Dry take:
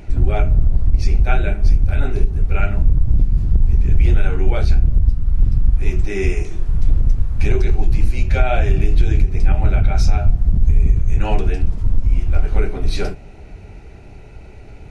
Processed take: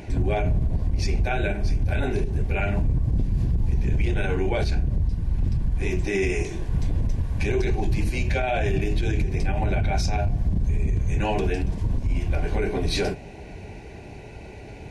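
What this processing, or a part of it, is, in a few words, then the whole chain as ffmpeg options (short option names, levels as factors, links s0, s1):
PA system with an anti-feedback notch: -af "highpass=f=130:p=1,asuperstop=centerf=1300:order=4:qfactor=5,alimiter=limit=0.119:level=0:latency=1:release=36,volume=1.5"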